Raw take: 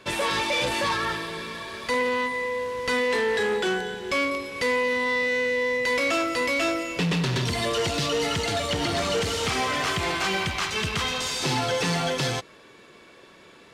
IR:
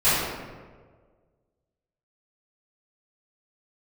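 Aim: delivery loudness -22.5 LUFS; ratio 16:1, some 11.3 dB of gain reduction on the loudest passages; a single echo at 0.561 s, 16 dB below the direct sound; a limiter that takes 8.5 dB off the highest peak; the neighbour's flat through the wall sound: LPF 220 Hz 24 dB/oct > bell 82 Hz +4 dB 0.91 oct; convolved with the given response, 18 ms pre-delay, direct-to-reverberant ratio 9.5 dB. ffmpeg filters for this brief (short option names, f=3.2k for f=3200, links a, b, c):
-filter_complex "[0:a]acompressor=threshold=-33dB:ratio=16,alimiter=level_in=7dB:limit=-24dB:level=0:latency=1,volume=-7dB,aecho=1:1:561:0.158,asplit=2[a][b];[1:a]atrim=start_sample=2205,adelay=18[c];[b][c]afir=irnorm=-1:irlink=0,volume=-28.5dB[d];[a][d]amix=inputs=2:normalize=0,lowpass=f=220:w=0.5412,lowpass=f=220:w=1.3066,equalizer=f=82:t=o:w=0.91:g=4,volume=25.5dB"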